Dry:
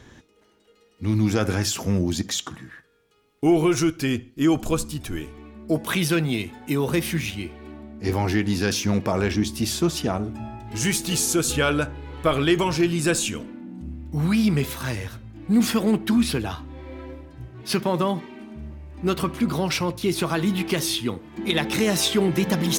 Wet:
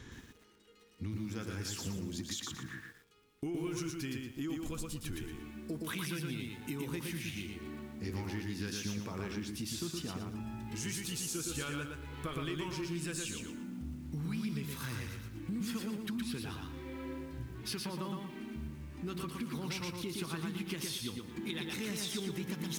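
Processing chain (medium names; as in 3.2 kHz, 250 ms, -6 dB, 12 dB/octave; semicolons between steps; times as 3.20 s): peaking EQ 650 Hz -11.5 dB 0.78 oct; compression 5:1, threshold -37 dBFS, peak gain reduction 19 dB; bit-crushed delay 117 ms, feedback 35%, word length 10-bit, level -3 dB; trim -2 dB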